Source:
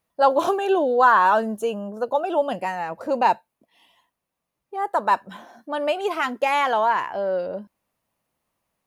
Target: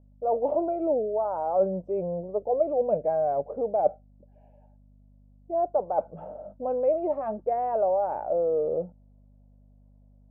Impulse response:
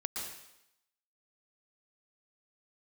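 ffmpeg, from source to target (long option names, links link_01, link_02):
-af "areverse,acompressor=threshold=-26dB:ratio=6,areverse,asetrate=37926,aresample=44100,aeval=exprs='val(0)+0.00282*(sin(2*PI*50*n/s)+sin(2*PI*2*50*n/s)/2+sin(2*PI*3*50*n/s)/3+sin(2*PI*4*50*n/s)/4+sin(2*PI*5*50*n/s)/5)':channel_layout=same,lowpass=frequency=620:width_type=q:width=5,volume=-4dB"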